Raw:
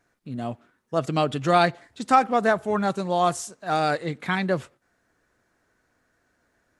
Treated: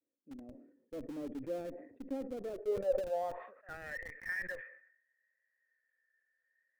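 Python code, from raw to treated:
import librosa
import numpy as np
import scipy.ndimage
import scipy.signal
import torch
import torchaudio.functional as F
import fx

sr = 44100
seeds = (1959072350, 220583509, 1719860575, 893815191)

p1 = fx.formant_cascade(x, sr, vowel='e')
p2 = fx.vibrato(p1, sr, rate_hz=0.61, depth_cents=46.0)
p3 = fx.filter_sweep_bandpass(p2, sr, from_hz=280.0, to_hz=1800.0, start_s=2.33, end_s=3.89, q=7.7)
p4 = fx.schmitt(p3, sr, flips_db=-52.0)
p5 = p3 + (p4 * librosa.db_to_amplitude(-10.0))
p6 = fx.sustainer(p5, sr, db_per_s=79.0)
y = p6 * librosa.db_to_amplitude(6.5)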